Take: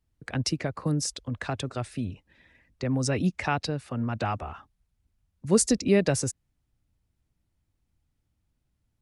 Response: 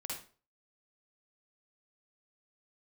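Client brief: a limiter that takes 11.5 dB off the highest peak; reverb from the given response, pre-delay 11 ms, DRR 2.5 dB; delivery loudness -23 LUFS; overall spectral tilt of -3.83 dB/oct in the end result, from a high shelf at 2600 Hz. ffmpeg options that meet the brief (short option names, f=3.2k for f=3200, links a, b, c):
-filter_complex "[0:a]highshelf=f=2.6k:g=8.5,alimiter=limit=-15dB:level=0:latency=1,asplit=2[a][b];[1:a]atrim=start_sample=2205,adelay=11[c];[b][c]afir=irnorm=-1:irlink=0,volume=-2dB[d];[a][d]amix=inputs=2:normalize=0,volume=3.5dB"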